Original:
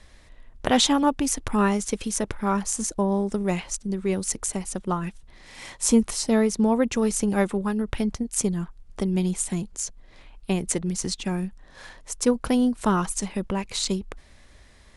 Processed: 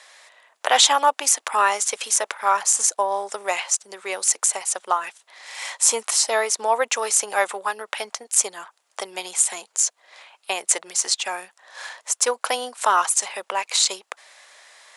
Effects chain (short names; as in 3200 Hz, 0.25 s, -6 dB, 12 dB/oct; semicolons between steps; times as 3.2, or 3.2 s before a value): HPF 640 Hz 24 dB/oct; bell 7300 Hz +3.5 dB 0.35 oct; in parallel at +2 dB: limiter -17 dBFS, peak gain reduction 10.5 dB; on the sum: gain +2 dB